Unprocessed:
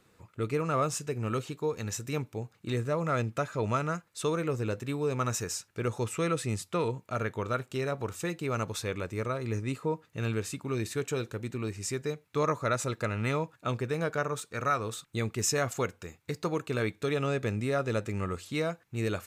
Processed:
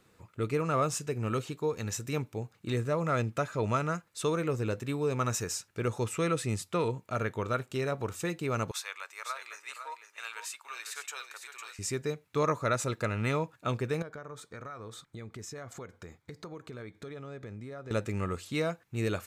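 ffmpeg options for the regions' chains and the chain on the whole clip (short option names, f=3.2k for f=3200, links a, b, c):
-filter_complex "[0:a]asettb=1/sr,asplit=3[a][b][c];[a]atrim=end=8.714[d];[b]atrim=start=8.71:end=11.79,asetpts=PTS-STARTPTS,afade=t=in:d=0.004:c=qsin,afade=t=out:st=3.076:d=0.004:c=qsin,highpass=f=890:w=0.5412,highpass=f=890:w=1.3066,aecho=1:1:504:0.398,atrim=end_sample=135828[e];[c]atrim=start=11.786[f];[d][e]acrossfade=d=0.004:c1=hsin:c2=qsin[g];[g][f]acrossfade=d=0.004:c1=qsin:c2=hsin,asettb=1/sr,asplit=3[h][i][j];[h]atrim=end=14.024[k];[i]atrim=start=14.02:end=17.91,asetpts=PTS-STARTPTS,afade=t=in:d=0.004:c=qsin,afade=t=out:st=3.886:d=0.004:c=qsin,aemphasis=mode=reproduction:type=cd,bandreject=f=2.7k:w=5.6,acompressor=threshold=-41dB:ratio=5:attack=3.2:release=140:knee=1:detection=peak[l];[j]atrim=start=17.906[m];[k][l]acrossfade=d=0.004:c1=hsin:c2=qsin[n];[n][m]acrossfade=d=0.004:c1=qsin:c2=hsin"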